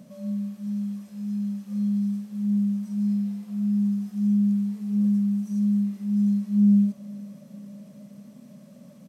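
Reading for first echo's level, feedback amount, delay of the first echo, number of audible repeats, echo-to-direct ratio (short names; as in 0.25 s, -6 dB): -18.5 dB, 55%, 0.471 s, 4, -17.0 dB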